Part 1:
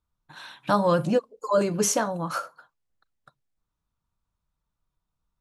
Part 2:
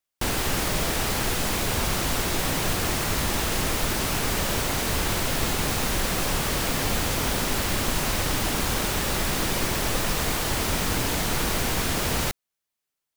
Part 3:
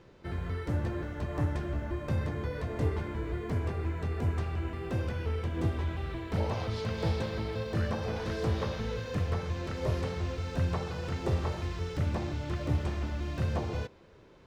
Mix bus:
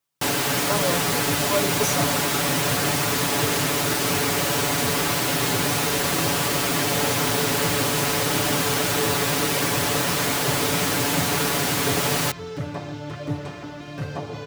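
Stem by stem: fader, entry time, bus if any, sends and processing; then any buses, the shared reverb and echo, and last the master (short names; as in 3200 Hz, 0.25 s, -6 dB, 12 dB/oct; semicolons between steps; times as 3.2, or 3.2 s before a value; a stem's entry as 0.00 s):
-6.0 dB, 0.00 s, no send, dry
+1.5 dB, 0.00 s, no send, dry
+2.0 dB, 0.60 s, no send, dry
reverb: off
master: HPF 130 Hz 12 dB/oct; comb 7 ms, depth 84%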